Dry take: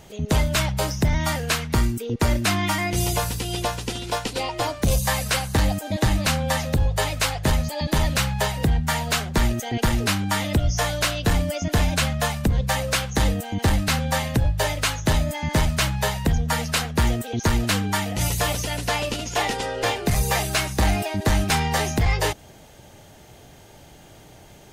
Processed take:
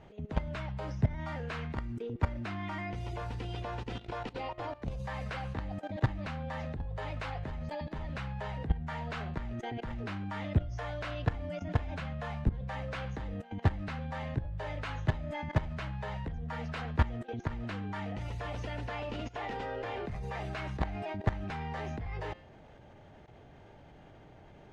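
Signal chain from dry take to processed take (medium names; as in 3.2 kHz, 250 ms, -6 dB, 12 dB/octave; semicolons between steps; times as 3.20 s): low-pass 2.1 kHz 12 dB/octave; de-hum 176.9 Hz, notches 28; level held to a coarse grid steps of 17 dB; trim -3.5 dB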